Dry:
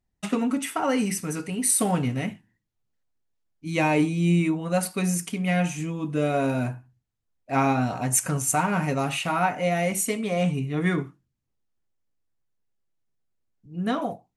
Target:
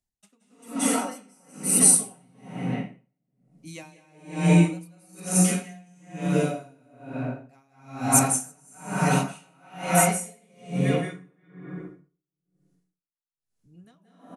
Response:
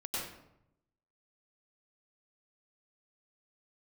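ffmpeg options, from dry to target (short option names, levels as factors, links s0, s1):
-filter_complex "[0:a]bass=f=250:g=-1,treble=f=4000:g=7,acrossover=split=120|4200[s0][s1][s2];[s1]aecho=1:1:348:0.631[s3];[s2]acontrast=23[s4];[s0][s3][s4]amix=inputs=3:normalize=0[s5];[1:a]atrim=start_sample=2205,asetrate=23373,aresample=44100[s6];[s5][s6]afir=irnorm=-1:irlink=0,aeval=exprs='val(0)*pow(10,-38*(0.5-0.5*cos(2*PI*1.1*n/s))/20)':c=same,volume=0.531"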